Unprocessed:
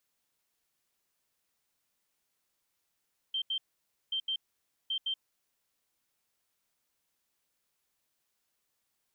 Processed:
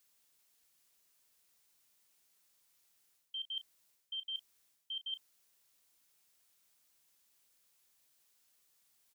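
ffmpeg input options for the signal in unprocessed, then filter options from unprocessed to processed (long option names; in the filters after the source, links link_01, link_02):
-f lavfi -i "aevalsrc='0.0335*sin(2*PI*3140*t)*clip(min(mod(mod(t,0.78),0.16),0.08-mod(mod(t,0.78),0.16))/0.005,0,1)*lt(mod(t,0.78),0.32)':duration=2.34:sample_rate=44100"
-filter_complex "[0:a]highshelf=frequency=2900:gain=8,areverse,acompressor=threshold=-40dB:ratio=6,areverse,asplit=2[link_01][link_02];[link_02]adelay=34,volume=-13.5dB[link_03];[link_01][link_03]amix=inputs=2:normalize=0"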